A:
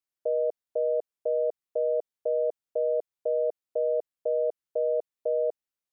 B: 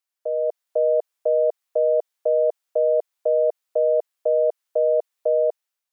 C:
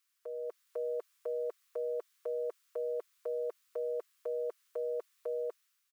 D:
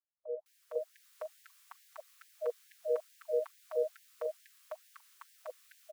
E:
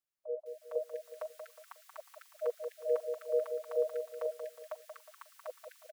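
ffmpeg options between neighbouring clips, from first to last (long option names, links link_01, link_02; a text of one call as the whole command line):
ffmpeg -i in.wav -af "highpass=630,dynaudnorm=framelen=140:gausssize=7:maxgain=6.5dB,volume=5dB" out.wav
ffmpeg -i in.wav -af "firequalizer=gain_entry='entry(370,0);entry(630,-18);entry(1100,12)':delay=0.05:min_phase=1,volume=-5dB" out.wav
ffmpeg -i in.wav -filter_complex "[0:a]acrossover=split=590[link_01][link_02];[link_02]adelay=460[link_03];[link_01][link_03]amix=inputs=2:normalize=0,afftfilt=real='re*gte(b*sr/1024,450*pow(1600/450,0.5+0.5*sin(2*PI*2.3*pts/sr)))':imag='im*gte(b*sr/1024,450*pow(1600/450,0.5+0.5*sin(2*PI*2.3*pts/sr)))':win_size=1024:overlap=0.75,volume=9dB" out.wav
ffmpeg -i in.wav -af "aecho=1:1:181|362|543|724:0.447|0.165|0.0612|0.0226,volume=1dB" out.wav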